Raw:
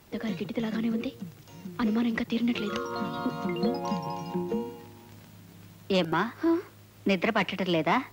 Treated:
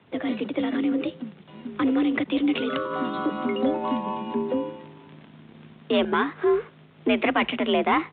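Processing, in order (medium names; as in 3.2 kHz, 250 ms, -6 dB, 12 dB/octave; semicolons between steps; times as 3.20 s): waveshaping leveller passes 1; frequency shift +51 Hz; resampled via 8 kHz; trim +1 dB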